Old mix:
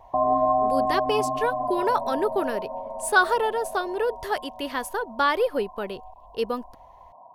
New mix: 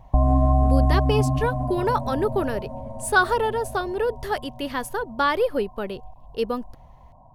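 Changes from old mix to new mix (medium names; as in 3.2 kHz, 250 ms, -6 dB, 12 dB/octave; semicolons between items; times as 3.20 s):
speech: add bass shelf 190 Hz +9 dB; background: remove cabinet simulation 410–2000 Hz, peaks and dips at 410 Hz +8 dB, 680 Hz +5 dB, 1 kHz +8 dB, 1.5 kHz -5 dB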